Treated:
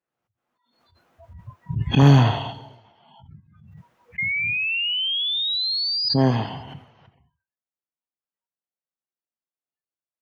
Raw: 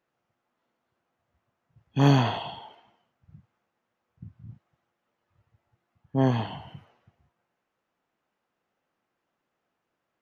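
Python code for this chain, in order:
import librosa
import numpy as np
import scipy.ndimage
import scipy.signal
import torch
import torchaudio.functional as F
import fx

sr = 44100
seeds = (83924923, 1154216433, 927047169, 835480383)

p1 = fx.peak_eq(x, sr, hz=90.0, db=10.5, octaves=1.0, at=(2.02, 2.51))
p2 = fx.spec_paint(p1, sr, seeds[0], shape='rise', start_s=4.18, length_s=1.91, low_hz=2100.0, high_hz=5000.0, level_db=-28.0)
p3 = p2 + fx.echo_feedback(p2, sr, ms=135, feedback_pct=50, wet_db=-19, dry=0)
p4 = fx.noise_reduce_blind(p3, sr, reduce_db=29)
p5 = np.clip(p4, -10.0 ** (-13.5 / 20.0), 10.0 ** (-13.5 / 20.0))
p6 = p4 + (p5 * 10.0 ** (-8.5 / 20.0))
p7 = fx.spec_box(p6, sr, start_s=2.53, length_s=0.32, low_hz=670.0, high_hz=3900.0, gain_db=-6)
p8 = fx.pre_swell(p7, sr, db_per_s=44.0)
y = p8 * 10.0 ** (1.0 / 20.0)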